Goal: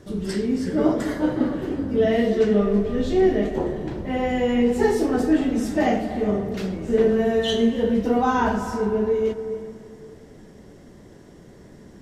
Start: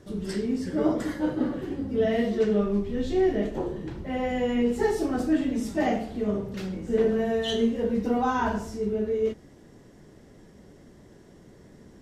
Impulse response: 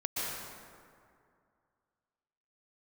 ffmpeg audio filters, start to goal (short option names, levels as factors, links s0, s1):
-filter_complex "[0:a]asplit=2[s0][s1];[1:a]atrim=start_sample=2205,lowpass=3300,adelay=115[s2];[s1][s2]afir=irnorm=-1:irlink=0,volume=0.158[s3];[s0][s3]amix=inputs=2:normalize=0,volume=1.68"